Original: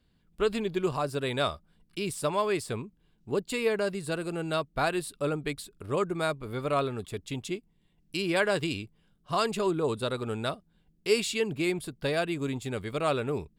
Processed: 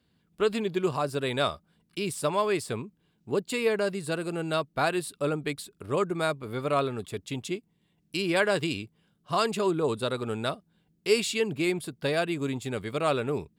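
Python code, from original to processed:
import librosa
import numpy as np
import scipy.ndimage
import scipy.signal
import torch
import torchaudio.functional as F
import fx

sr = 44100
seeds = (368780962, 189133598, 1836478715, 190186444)

y = scipy.signal.sosfilt(scipy.signal.butter(2, 96.0, 'highpass', fs=sr, output='sos'), x)
y = y * 10.0 ** (1.5 / 20.0)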